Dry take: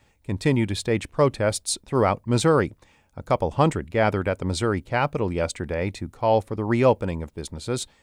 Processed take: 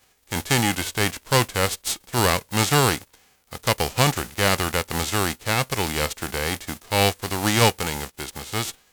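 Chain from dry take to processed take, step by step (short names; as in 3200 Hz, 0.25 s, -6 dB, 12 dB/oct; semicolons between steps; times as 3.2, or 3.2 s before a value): spectral whitening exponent 0.3; varispeed -10%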